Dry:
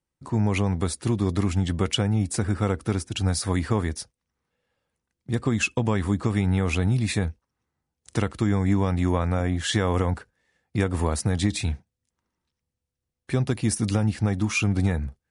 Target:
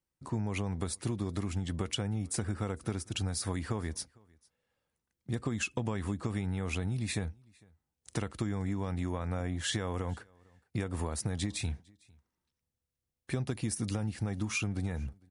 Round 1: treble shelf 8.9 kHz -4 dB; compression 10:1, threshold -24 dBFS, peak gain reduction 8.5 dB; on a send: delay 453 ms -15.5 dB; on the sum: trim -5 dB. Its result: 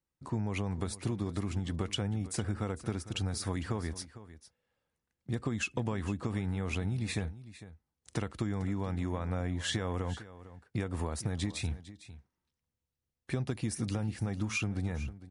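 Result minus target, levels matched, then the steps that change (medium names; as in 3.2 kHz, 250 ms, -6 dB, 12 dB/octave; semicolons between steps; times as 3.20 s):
echo-to-direct +12 dB; 8 kHz band -3.0 dB
change: treble shelf 8.9 kHz +5 dB; change: delay 453 ms -27.5 dB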